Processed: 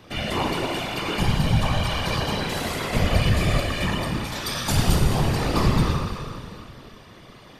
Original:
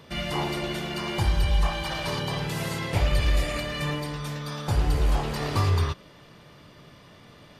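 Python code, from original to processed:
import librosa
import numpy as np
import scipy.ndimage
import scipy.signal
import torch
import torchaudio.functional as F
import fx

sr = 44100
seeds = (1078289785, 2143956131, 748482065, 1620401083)

y = fx.high_shelf(x, sr, hz=2500.0, db=11.5, at=(4.32, 4.96))
y = fx.rev_schroeder(y, sr, rt60_s=2.4, comb_ms=27, drr_db=2.0)
y = fx.whisperise(y, sr, seeds[0])
y = y * librosa.db_to_amplitude(2.0)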